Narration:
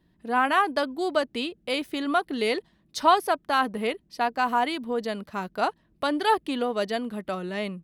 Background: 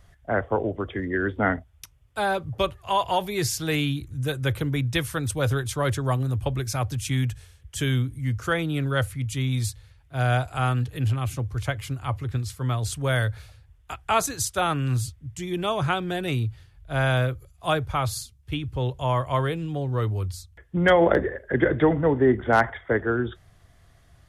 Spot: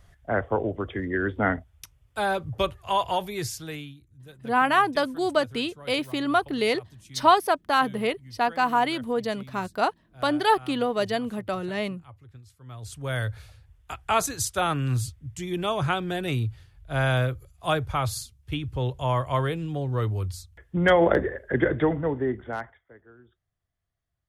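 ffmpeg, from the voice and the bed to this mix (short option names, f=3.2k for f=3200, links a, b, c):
-filter_complex "[0:a]adelay=4200,volume=1.5dB[a];[1:a]volume=18.5dB,afade=t=out:st=2.99:d=0.96:silence=0.105925,afade=t=in:st=12.65:d=0.89:silence=0.105925,afade=t=out:st=21.54:d=1.28:silence=0.0421697[b];[a][b]amix=inputs=2:normalize=0"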